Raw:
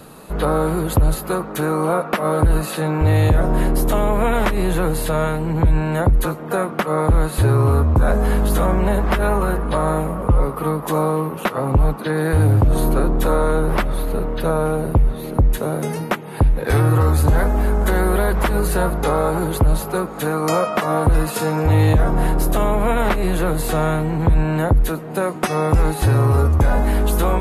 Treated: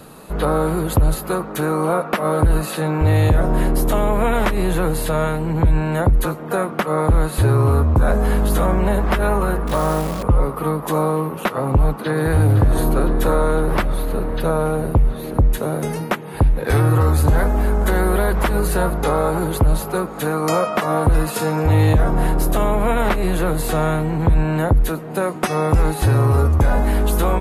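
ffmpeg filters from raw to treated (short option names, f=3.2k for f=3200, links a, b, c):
-filter_complex "[0:a]asettb=1/sr,asplit=3[a][b][c];[a]atrim=end=9.674[d];[b]atrim=start=9.67:end=10.23,asetpts=PTS-STARTPTS,afade=t=in:d=0.004:c=qsin,afade=t=out:st=0.556:d=0.004:c=qsin,acrusher=bits=6:dc=4:mix=0:aa=0.000001[e];[c]atrim=start=10.226[f];[d][e]acrossfade=d=0.004:c1=hsin:c2=qsin[g];[g][f]acrossfade=d=0.004:c1=qsin:c2=hsin,asplit=2[h][i];[i]afade=t=in:st=11.48:d=0.01,afade=t=out:st=12.32:d=0.01,aecho=0:1:510|1020|1530|2040|2550|3060|3570|4080|4590|5100|5610|6120:0.298538|0.223904|0.167928|0.125946|0.0944594|0.0708445|0.0531334|0.03985|0.0298875|0.0224157|0.0168117|0.0126088[j];[h][j]amix=inputs=2:normalize=0"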